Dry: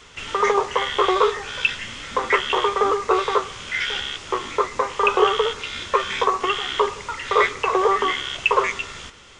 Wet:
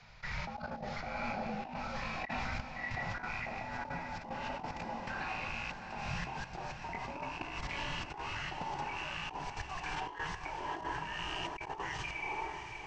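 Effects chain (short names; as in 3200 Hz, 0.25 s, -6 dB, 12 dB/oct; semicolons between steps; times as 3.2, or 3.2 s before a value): gliding pitch shift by +4 st starting unshifted; low shelf 120 Hz -6 dB; frequency shift -92 Hz; level quantiser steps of 18 dB; EQ curve 230 Hz 0 dB, 380 Hz -27 dB, 600 Hz -13 dB; on a send: diffused feedback echo 0.491 s, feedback 49%, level -9 dB; on the sum: varispeed -27%; de-hum 66.73 Hz, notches 28; negative-ratio compressor -44 dBFS, ratio -1; gain +5.5 dB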